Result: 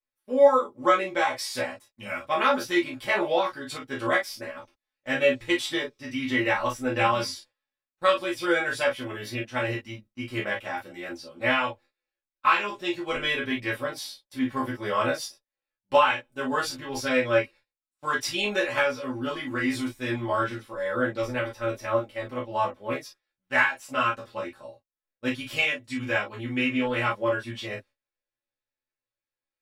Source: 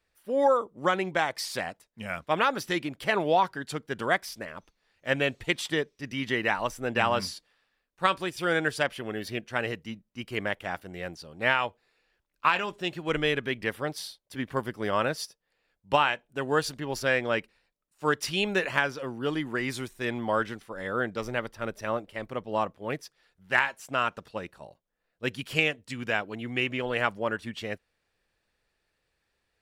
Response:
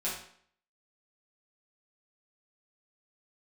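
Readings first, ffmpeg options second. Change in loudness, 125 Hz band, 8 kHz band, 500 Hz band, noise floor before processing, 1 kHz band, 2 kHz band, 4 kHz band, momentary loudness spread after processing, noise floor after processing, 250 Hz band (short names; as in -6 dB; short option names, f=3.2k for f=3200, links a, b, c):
+2.5 dB, 0.0 dB, +1.5 dB, +3.0 dB, -78 dBFS, +2.0 dB, +1.5 dB, +1.5 dB, 12 LU, under -85 dBFS, +3.5 dB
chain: -filter_complex "[0:a]agate=range=-20dB:threshold=-51dB:ratio=16:detection=peak[a];[1:a]atrim=start_sample=2205,atrim=end_sample=4410,asetrate=66150,aresample=44100[b];[a][b]afir=irnorm=-1:irlink=0,volume=1dB"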